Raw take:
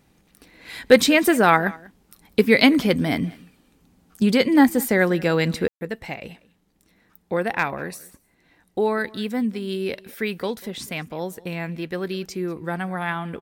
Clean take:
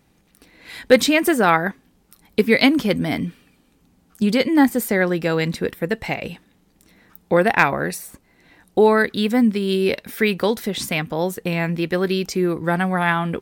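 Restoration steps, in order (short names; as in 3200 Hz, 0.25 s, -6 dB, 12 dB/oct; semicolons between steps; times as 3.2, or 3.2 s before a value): room tone fill 5.68–5.81; inverse comb 0.193 s -22.5 dB; gain 0 dB, from 5.68 s +7.5 dB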